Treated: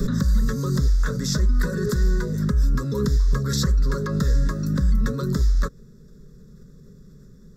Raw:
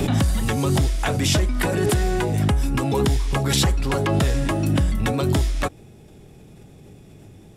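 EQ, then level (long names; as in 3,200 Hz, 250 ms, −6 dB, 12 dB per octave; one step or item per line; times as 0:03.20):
low-shelf EQ 85 Hz +10 dB
phaser with its sweep stopped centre 470 Hz, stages 8
phaser with its sweep stopped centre 3,000 Hz, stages 6
0.0 dB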